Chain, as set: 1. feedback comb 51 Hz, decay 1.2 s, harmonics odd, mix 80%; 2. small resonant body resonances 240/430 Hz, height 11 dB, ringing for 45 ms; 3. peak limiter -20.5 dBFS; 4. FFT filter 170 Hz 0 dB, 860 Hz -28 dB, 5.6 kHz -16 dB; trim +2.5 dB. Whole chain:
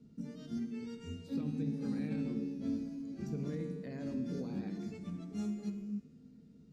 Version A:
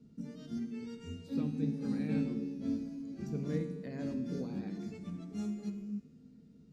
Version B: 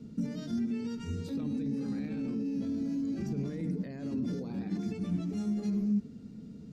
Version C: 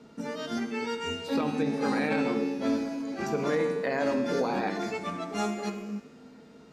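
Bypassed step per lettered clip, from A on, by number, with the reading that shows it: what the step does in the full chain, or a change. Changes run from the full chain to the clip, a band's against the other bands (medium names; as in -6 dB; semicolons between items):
3, momentary loudness spread change +1 LU; 1, 250 Hz band +2.0 dB; 4, 125 Hz band -18.0 dB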